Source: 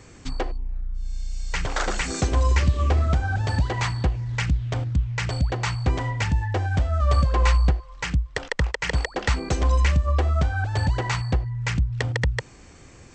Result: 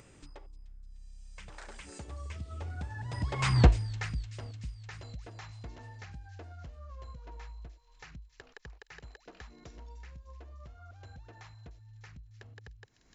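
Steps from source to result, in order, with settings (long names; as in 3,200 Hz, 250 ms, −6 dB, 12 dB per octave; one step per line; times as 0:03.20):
source passing by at 0:03.61, 35 m/s, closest 2.2 metres
delay with a high-pass on its return 300 ms, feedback 64%, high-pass 4,300 Hz, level −10.5 dB
upward compression, threshold −45 dBFS
level +5 dB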